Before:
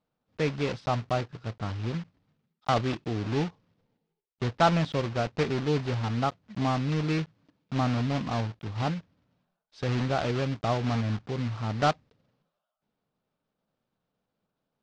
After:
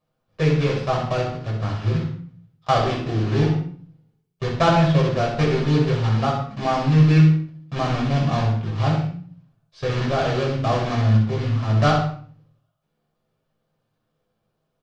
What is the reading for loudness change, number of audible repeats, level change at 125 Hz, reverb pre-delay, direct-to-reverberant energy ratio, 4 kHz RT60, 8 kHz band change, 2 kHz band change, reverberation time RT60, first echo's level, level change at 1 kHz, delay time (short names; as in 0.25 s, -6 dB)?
+8.5 dB, 1, +11.0 dB, 8 ms, -3.0 dB, 0.40 s, n/a, +6.0 dB, 0.50 s, -7.5 dB, +6.5 dB, 64 ms